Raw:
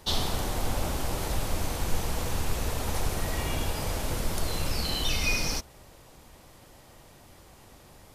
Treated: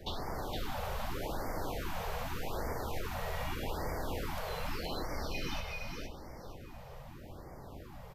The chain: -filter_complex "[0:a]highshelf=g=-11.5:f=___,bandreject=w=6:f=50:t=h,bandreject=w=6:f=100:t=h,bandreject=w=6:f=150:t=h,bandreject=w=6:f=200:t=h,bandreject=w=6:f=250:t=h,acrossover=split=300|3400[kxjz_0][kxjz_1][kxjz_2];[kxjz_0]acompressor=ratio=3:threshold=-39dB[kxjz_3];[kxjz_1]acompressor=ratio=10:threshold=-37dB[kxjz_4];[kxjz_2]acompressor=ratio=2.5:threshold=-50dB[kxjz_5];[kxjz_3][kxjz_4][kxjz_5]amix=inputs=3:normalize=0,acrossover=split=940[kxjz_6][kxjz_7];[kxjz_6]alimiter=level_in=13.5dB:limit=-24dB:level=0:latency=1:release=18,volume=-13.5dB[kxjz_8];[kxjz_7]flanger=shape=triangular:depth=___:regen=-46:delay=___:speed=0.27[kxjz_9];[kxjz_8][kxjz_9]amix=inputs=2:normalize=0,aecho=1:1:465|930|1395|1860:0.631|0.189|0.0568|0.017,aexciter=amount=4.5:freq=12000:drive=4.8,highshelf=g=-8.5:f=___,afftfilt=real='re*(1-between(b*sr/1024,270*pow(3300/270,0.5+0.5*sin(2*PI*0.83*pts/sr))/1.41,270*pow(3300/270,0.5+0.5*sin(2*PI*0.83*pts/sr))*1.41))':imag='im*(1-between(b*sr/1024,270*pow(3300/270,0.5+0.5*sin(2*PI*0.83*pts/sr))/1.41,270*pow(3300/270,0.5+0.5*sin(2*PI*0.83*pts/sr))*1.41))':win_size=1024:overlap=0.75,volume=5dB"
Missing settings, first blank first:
7500, 6.9, 5.1, 3100